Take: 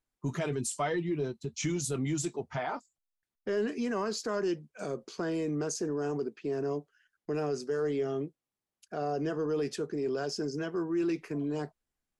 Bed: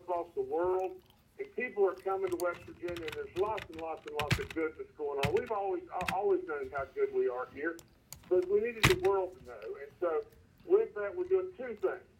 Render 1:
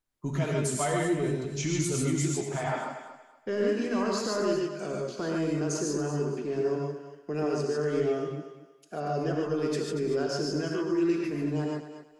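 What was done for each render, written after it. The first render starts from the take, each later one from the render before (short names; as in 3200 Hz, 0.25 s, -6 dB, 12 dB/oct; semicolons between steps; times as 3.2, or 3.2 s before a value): on a send: thinning echo 0.235 s, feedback 28%, high-pass 300 Hz, level -10 dB; on the sum: non-linear reverb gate 0.17 s rising, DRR -1 dB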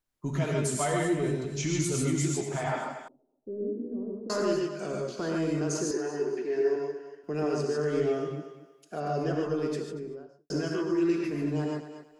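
3.08–4.3 ladder low-pass 440 Hz, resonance 40%; 5.91–7.24 speaker cabinet 360–9700 Hz, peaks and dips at 390 Hz +7 dB, 570 Hz -6 dB, 1200 Hz -10 dB, 1800 Hz +9 dB, 3300 Hz -6 dB, 7700 Hz -9 dB; 9.4–10.5 studio fade out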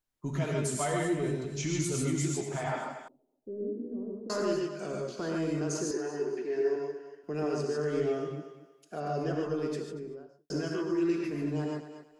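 gain -2.5 dB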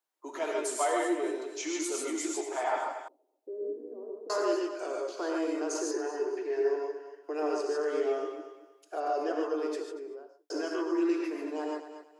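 Chebyshev high-pass 310 Hz, order 5; bell 890 Hz +7 dB 1.1 oct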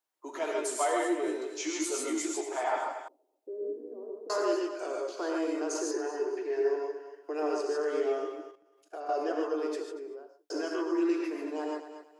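1.26–2.22 doubler 16 ms -5 dB; 8.51–9.09 level quantiser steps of 13 dB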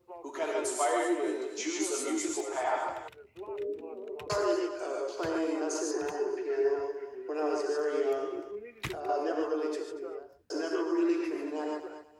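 add bed -12 dB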